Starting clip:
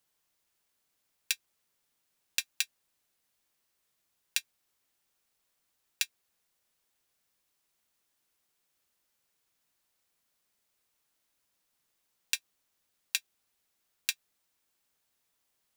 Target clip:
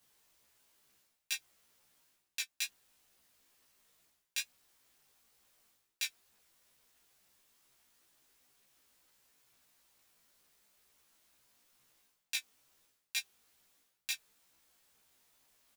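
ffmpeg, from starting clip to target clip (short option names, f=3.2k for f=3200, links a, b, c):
-filter_complex "[0:a]areverse,acompressor=threshold=-42dB:ratio=12,areverse,flanger=delay=15:depth=4.4:speed=2.2,asplit=2[a][b];[b]adelay=15,volume=-3dB[c];[a][c]amix=inputs=2:normalize=0,volume=9dB"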